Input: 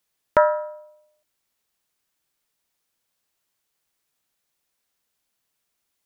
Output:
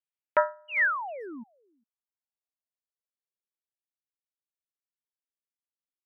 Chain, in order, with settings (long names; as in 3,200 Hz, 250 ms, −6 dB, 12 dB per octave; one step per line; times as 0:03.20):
bass and treble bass −14 dB, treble −1 dB
sound drawn into the spectrogram fall, 0:00.68–0:01.44, 210–3,000 Hz −21 dBFS
low-pass filter sweep 2,800 Hz → 300 Hz, 0:00.14–0:04.08
far-end echo of a speakerphone 400 ms, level −20 dB
expander for the loud parts 2.5 to 1, over −25 dBFS
level −5.5 dB